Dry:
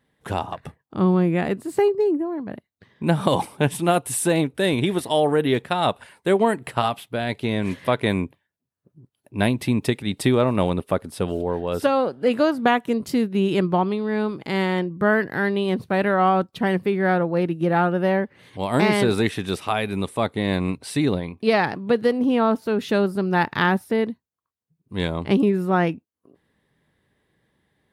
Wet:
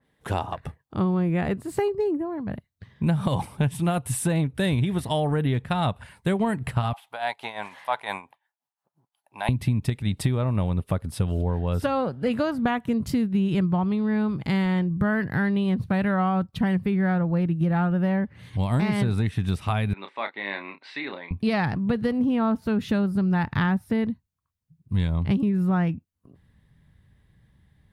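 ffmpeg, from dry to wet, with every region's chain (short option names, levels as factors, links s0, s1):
-filter_complex "[0:a]asettb=1/sr,asplit=3[s0][s1][s2];[s0]atrim=end=6.934[s3];[s1]atrim=start=6.93:end=9.49,asetpts=PTS-STARTPTS,afade=t=in:d=0.004:c=qsin,afade=t=out:st=2.556:d=0.004:c=qsin,tremolo=f=5.8:d=0.73,highpass=f=820:t=q:w=4.8[s4];[s2]atrim=start=9.486[s5];[s3][s4]acrossfade=d=0.004:c1=hsin:c2=qsin[s6];[s6][s5]acrossfade=d=0.004:c1=qsin:c2=hsin,asettb=1/sr,asplit=3[s7][s8][s9];[s7]atrim=end=19.934[s10];[s8]atrim=start=19.93:end=21.31,asetpts=PTS-STARTPTS,afade=t=in:d=0.004:c=qsin,afade=t=out:st=1.376:d=0.004:c=qsin,highpass=f=440:w=0.5412,highpass=f=440:w=1.3066,equalizer=f=470:t=q:w=4:g=-10,equalizer=f=690:t=q:w=4:g=-7,equalizer=f=1200:t=q:w=4:g=-4,equalizer=f=2000:t=q:w=4:g=4,equalizer=f=3100:t=q:w=4:g=-6,lowpass=f=3600:w=0.5412,lowpass=f=3600:w=1.3066,asplit=2[s11][s12];[s12]adelay=30,volume=0.376[s13];[s11][s13]amix=inputs=2:normalize=0,atrim=end_sample=60858[s14];[s9]atrim=start=21.306[s15];[s10][s14]acrossfade=d=0.004:c1=hsin:c2=qsin[s16];[s16][s15]acrossfade=d=0.004:c1=qsin:c2=hsin,asubboost=boost=10:cutoff=120,acompressor=threshold=0.1:ratio=6,adynamicequalizer=threshold=0.00708:dfrequency=2600:dqfactor=0.7:tfrequency=2600:tqfactor=0.7:attack=5:release=100:ratio=0.375:range=3:mode=cutabove:tftype=highshelf"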